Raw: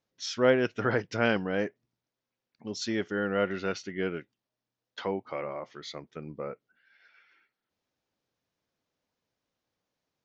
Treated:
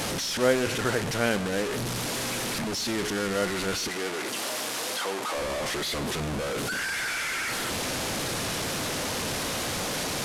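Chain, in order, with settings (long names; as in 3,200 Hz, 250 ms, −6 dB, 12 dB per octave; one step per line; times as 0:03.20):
linear delta modulator 64 kbit/s, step −24 dBFS
0:03.88–0:05.35: high-pass filter 340 Hz 12 dB per octave
on a send: convolution reverb RT60 1.6 s, pre-delay 83 ms, DRR 15.5 dB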